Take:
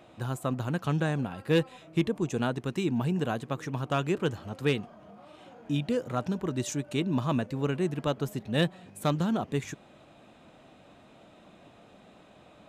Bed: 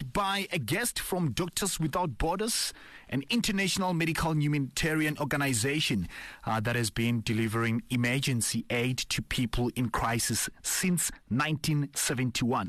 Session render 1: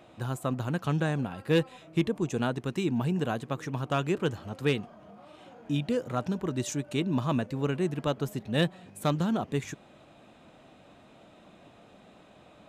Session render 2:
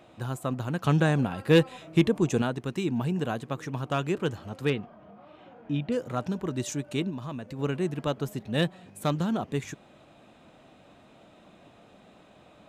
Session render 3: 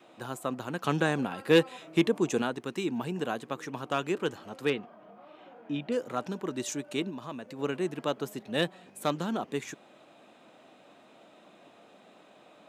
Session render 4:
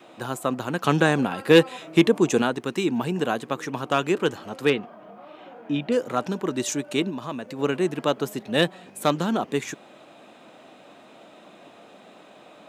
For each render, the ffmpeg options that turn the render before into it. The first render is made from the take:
-af anull
-filter_complex "[0:a]asettb=1/sr,asplit=3[s0][s1][s2];[s0]atrim=end=0.834[s3];[s1]atrim=start=0.83:end=2.42,asetpts=PTS-STARTPTS,afade=t=in:d=0.004:c=qsin,afade=t=out:st=1.586:d=0.004:c=qsin,acontrast=30[s4];[s2]atrim=start=2.416[s5];[s3][s4]acrossfade=d=0.004:c1=hsin:c2=qsin[s6];[s6][s5]acrossfade=d=0.004:c1=qsin:c2=hsin,asettb=1/sr,asplit=3[s7][s8][s9];[s7]atrim=end=4.704[s10];[s8]atrim=start=4.7:end=5.92,asetpts=PTS-STARTPTS,afade=t=in:d=0.004:c=qsin,afade=t=out:st=1.216:d=0.004:c=qsin,lowpass=2900[s11];[s9]atrim=start=5.916[s12];[s10][s11]acrossfade=d=0.004:c1=hsin:c2=qsin[s13];[s13][s12]acrossfade=d=0.004:c1=qsin:c2=hsin,asplit=3[s14][s15][s16];[s14]afade=t=out:st=7.09:d=0.02[s17];[s15]acompressor=threshold=0.0178:ratio=3:attack=3.2:release=140:knee=1:detection=peak,afade=t=in:st=7.09:d=0.02,afade=t=out:st=7.58:d=0.02[s18];[s16]afade=t=in:st=7.58:d=0.02[s19];[s17][s18][s19]amix=inputs=3:normalize=0"
-af "highpass=260,adynamicequalizer=threshold=0.00447:dfrequency=630:dqfactor=3.8:tfrequency=630:tqfactor=3.8:attack=5:release=100:ratio=0.375:range=2:mode=cutabove:tftype=bell"
-af "volume=2.37,alimiter=limit=0.708:level=0:latency=1"

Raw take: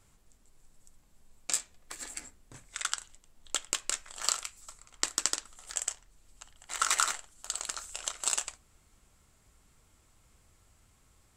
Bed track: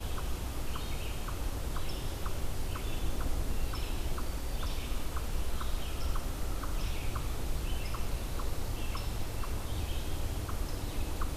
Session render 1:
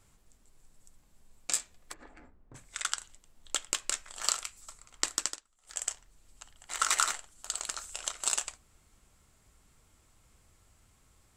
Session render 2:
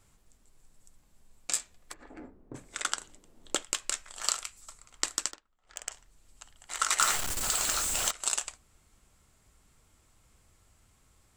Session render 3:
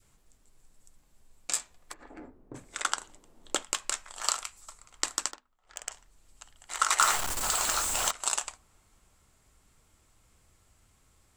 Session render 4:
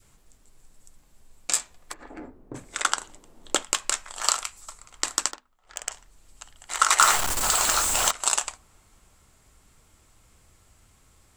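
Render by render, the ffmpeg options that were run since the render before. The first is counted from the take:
-filter_complex "[0:a]asplit=3[s0][s1][s2];[s0]afade=t=out:st=1.92:d=0.02[s3];[s1]lowpass=1200,afade=t=in:st=1.92:d=0.02,afade=t=out:st=2.54:d=0.02[s4];[s2]afade=t=in:st=2.54:d=0.02[s5];[s3][s4][s5]amix=inputs=3:normalize=0,asplit=3[s6][s7][s8];[s6]atrim=end=5.41,asetpts=PTS-STARTPTS,afade=t=out:st=5.16:d=0.25:silence=0.105925[s9];[s7]atrim=start=5.41:end=5.61,asetpts=PTS-STARTPTS,volume=0.106[s10];[s8]atrim=start=5.61,asetpts=PTS-STARTPTS,afade=t=in:d=0.25:silence=0.105925[s11];[s9][s10][s11]concat=n=3:v=0:a=1"
-filter_complex "[0:a]asettb=1/sr,asplit=3[s0][s1][s2];[s0]atrim=end=2.104[s3];[s1]atrim=start=2.1:end=3.63,asetpts=PTS-STARTPTS,afade=t=in:d=0.004:c=qsin,afade=t=out:st=1.526:d=0.004:c=qsin,equalizer=f=340:t=o:w=2.2:g=14[s4];[s2]atrim=start=3.626[s5];[s3][s4]acrossfade=d=0.004:c1=hsin:c2=qsin[s6];[s6][s5]acrossfade=d=0.004:c1=qsin:c2=hsin,asettb=1/sr,asplit=3[s7][s8][s9];[s7]atrim=end=5.314[s10];[s8]atrim=start=5.31:end=5.92,asetpts=PTS-STARTPTS,afade=t=in:d=0.004:c=qsin,afade=t=out:st=0.606:d=0.004:c=qsin,adynamicsmooth=sensitivity=2.5:basefreq=2800[s11];[s9]atrim=start=5.916[s12];[s10][s11]acrossfade=d=0.004:c1=hsin:c2=qsin[s13];[s13][s12]acrossfade=d=0.004:c1=qsin:c2=hsin,asettb=1/sr,asplit=3[s14][s15][s16];[s14]atrim=end=7.004[s17];[s15]atrim=start=7:end=8.11,asetpts=PTS-STARTPTS,afade=t=in:d=0.004:c=qsin,afade=t=out:st=1.106:d=0.004:c=qsin,aeval=exprs='val(0)+0.5*0.0501*sgn(val(0))':c=same[s18];[s16]atrim=start=8.106[s19];[s17][s18]acrossfade=d=0.004:c1=hsin:c2=qsin[s20];[s20][s19]acrossfade=d=0.004:c1=qsin:c2=hsin"
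-af "bandreject=f=50:t=h:w=6,bandreject=f=100:t=h:w=6,bandreject=f=150:t=h:w=6,bandreject=f=200:t=h:w=6,bandreject=f=250:t=h:w=6,adynamicequalizer=threshold=0.00282:dfrequency=940:dqfactor=1.3:tfrequency=940:tqfactor=1.3:attack=5:release=100:ratio=0.375:range=3.5:mode=boostabove:tftype=bell"
-af "volume=2,alimiter=limit=0.891:level=0:latency=1"

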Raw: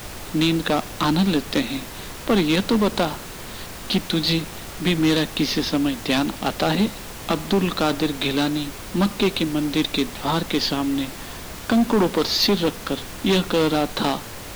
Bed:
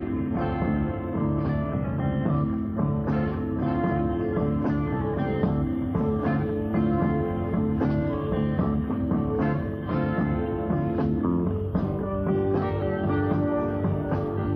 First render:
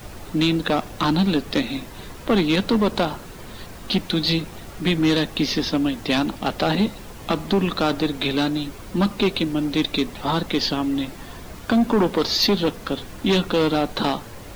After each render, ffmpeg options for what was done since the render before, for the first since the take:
-af "afftdn=nr=8:nf=-36"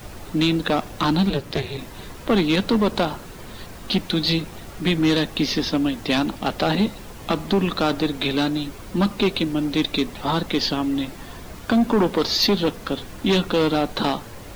-filter_complex "[0:a]asplit=3[s0][s1][s2];[s0]afade=t=out:st=1.29:d=0.02[s3];[s1]aeval=exprs='val(0)*sin(2*PI*140*n/s)':c=same,afade=t=in:st=1.29:d=0.02,afade=t=out:st=1.77:d=0.02[s4];[s2]afade=t=in:st=1.77:d=0.02[s5];[s3][s4][s5]amix=inputs=3:normalize=0"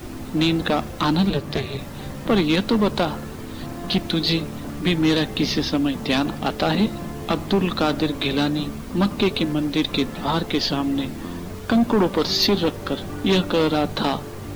-filter_complex "[1:a]volume=0.376[s0];[0:a][s0]amix=inputs=2:normalize=0"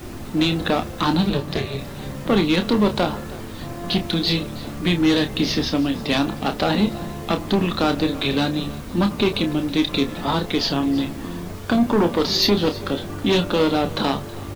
-filter_complex "[0:a]asplit=2[s0][s1];[s1]adelay=29,volume=0.398[s2];[s0][s2]amix=inputs=2:normalize=0,aecho=1:1:321:0.106"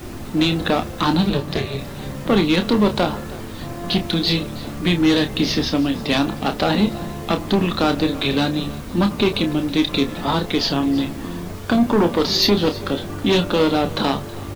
-af "volume=1.19"

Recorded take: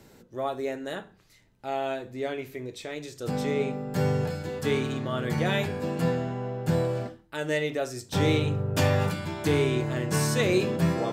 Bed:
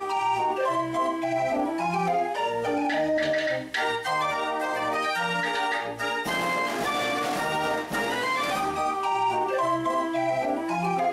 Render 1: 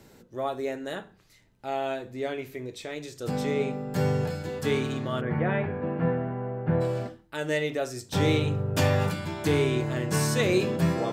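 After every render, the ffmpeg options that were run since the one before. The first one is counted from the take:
-filter_complex "[0:a]asplit=3[s0][s1][s2];[s0]afade=t=out:st=5.2:d=0.02[s3];[s1]lowpass=f=2100:w=0.5412,lowpass=f=2100:w=1.3066,afade=t=in:st=5.2:d=0.02,afade=t=out:st=6.8:d=0.02[s4];[s2]afade=t=in:st=6.8:d=0.02[s5];[s3][s4][s5]amix=inputs=3:normalize=0"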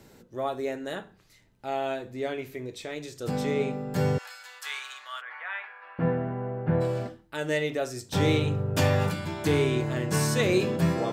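-filter_complex "[0:a]asettb=1/sr,asplit=3[s0][s1][s2];[s0]atrim=end=4.184[s3];[s1]atrim=start=4.18:end=5.99,asetpts=PTS-STARTPTS,afade=t=in:d=0.004:c=qsin,afade=t=out:st=1.806:d=0.004:c=qsin,highpass=f=1100:w=0.5412,highpass=f=1100:w=1.3066[s4];[s2]atrim=start=5.986[s5];[s3][s4]acrossfade=d=0.004:c1=hsin:c2=qsin[s6];[s6][s5]acrossfade=d=0.004:c1=qsin:c2=hsin"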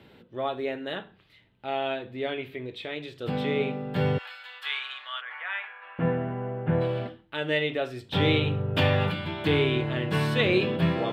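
-af "highpass=53,highshelf=f=4600:t=q:w=3:g=-12.5"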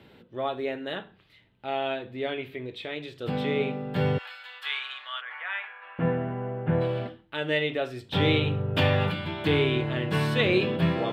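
-af anull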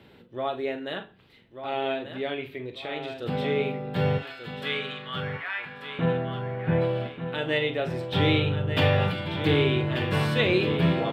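-filter_complex "[0:a]asplit=2[s0][s1];[s1]adelay=42,volume=0.282[s2];[s0][s2]amix=inputs=2:normalize=0,asplit=2[s3][s4];[s4]aecho=0:1:1188|2376|3564|4752:0.355|0.117|0.0386|0.0128[s5];[s3][s5]amix=inputs=2:normalize=0"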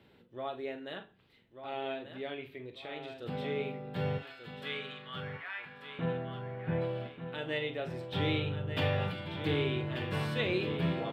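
-af "volume=0.355"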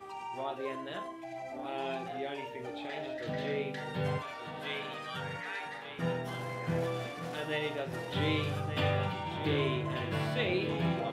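-filter_complex "[1:a]volume=0.15[s0];[0:a][s0]amix=inputs=2:normalize=0"

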